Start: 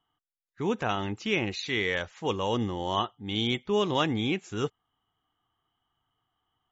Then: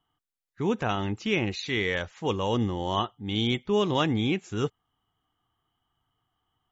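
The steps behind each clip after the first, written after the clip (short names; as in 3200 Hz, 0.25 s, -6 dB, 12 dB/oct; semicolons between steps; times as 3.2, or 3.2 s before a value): low shelf 260 Hz +5 dB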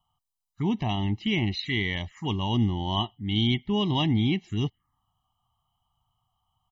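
comb 1 ms, depth 90%; envelope phaser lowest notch 320 Hz, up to 1400 Hz, full sweep at -24 dBFS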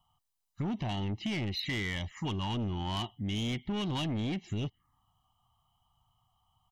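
soft clip -25.5 dBFS, distortion -10 dB; compressor, threshold -34 dBFS, peak gain reduction 6.5 dB; gain +2.5 dB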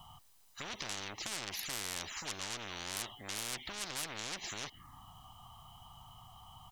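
spectral compressor 10:1; gain +2.5 dB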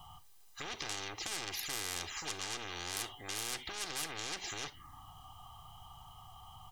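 reverb, pre-delay 3 ms, DRR 13.5 dB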